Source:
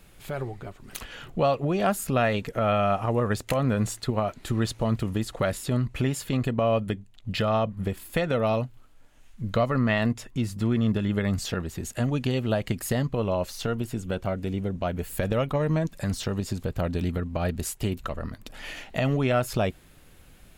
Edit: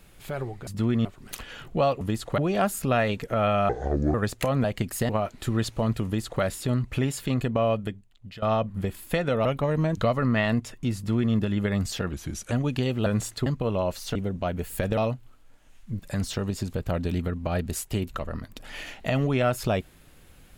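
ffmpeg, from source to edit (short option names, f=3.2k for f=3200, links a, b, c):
-filter_complex "[0:a]asplit=19[a][b][c][d][e][f][g][h][i][j][k][l][m][n][o][p][q][r][s];[a]atrim=end=0.672[t];[b]atrim=start=10.488:end=10.872[u];[c]atrim=start=0.668:end=1.632[v];[d]atrim=start=5.078:end=5.452[w];[e]atrim=start=1.628:end=2.944[x];[f]atrim=start=2.94:end=3.22,asetpts=PTS-STARTPTS,asetrate=27342,aresample=44100,atrim=end_sample=19916,asetpts=PTS-STARTPTS[y];[g]atrim=start=3.216:end=3.722[z];[h]atrim=start=12.538:end=12.992[aa];[i]atrim=start=4.118:end=7.45,asetpts=PTS-STARTPTS,afade=t=out:st=2.532:d=0.8:silence=0.105925[ab];[j]atrim=start=7.45:end=8.482,asetpts=PTS-STARTPTS,afade=t=in:d=0.004:c=hsin:silence=0.105925[ac];[k]atrim=start=15.368:end=15.892[ad];[l]atrim=start=9.498:end=11.654[ae];[m]atrim=start=11.65:end=11.99,asetpts=PTS-STARTPTS,asetrate=38367,aresample=44100,atrim=end_sample=17234,asetpts=PTS-STARTPTS[af];[n]atrim=start=11.986:end=12.542[ag];[o]atrim=start=3.718:end=4.122[ah];[p]atrim=start=12.988:end=13.682[ai];[q]atrim=start=14.548:end=15.372[aj];[r]atrim=start=8.478:end=9.502[ak];[s]atrim=start=15.888[al];[t][u]acrossfade=d=0.004:c1=hsin:c2=hsin[am];[am][v]acrossfade=d=0.004:c1=hsin:c2=hsin[an];[an][w]acrossfade=d=0.004:c1=hsin:c2=hsin[ao];[ao][x]acrossfade=d=0.004:c1=hsin:c2=hsin[ap];[ap][y]acrossfade=d=0.004:c1=hsin:c2=hsin[aq];[aq][z]acrossfade=d=0.004:c1=hsin:c2=hsin[ar];[ar][aa]acrossfade=d=0.004:c1=hsin:c2=hsin[as];[ab][ac]concat=n=2:v=0:a=1[at];[as][at]acrossfade=d=0.004:c1=hsin:c2=hsin[au];[au][ad]acrossfade=d=0.004:c1=hsin:c2=hsin[av];[av][ae]acrossfade=d=0.004:c1=hsin:c2=hsin[aw];[aw][af]acrossfade=d=0.004:c1=hsin:c2=hsin[ax];[ax][ag]acrossfade=d=0.004:c1=hsin:c2=hsin[ay];[ay][ah]acrossfade=d=0.004:c1=hsin:c2=hsin[az];[az][ai]acrossfade=d=0.004:c1=hsin:c2=hsin[ba];[ba][aj]acrossfade=d=0.004:c1=hsin:c2=hsin[bb];[bb][ak]acrossfade=d=0.004:c1=hsin:c2=hsin[bc];[bc][al]acrossfade=d=0.004:c1=hsin:c2=hsin"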